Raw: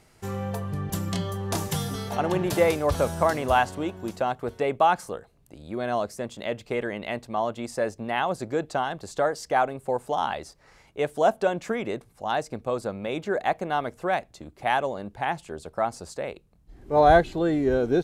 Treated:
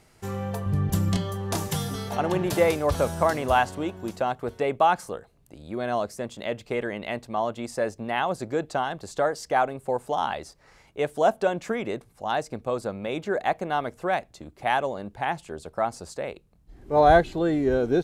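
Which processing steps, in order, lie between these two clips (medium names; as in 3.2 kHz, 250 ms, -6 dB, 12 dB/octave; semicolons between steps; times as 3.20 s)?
0.66–1.17 s: bass shelf 190 Hz +9.5 dB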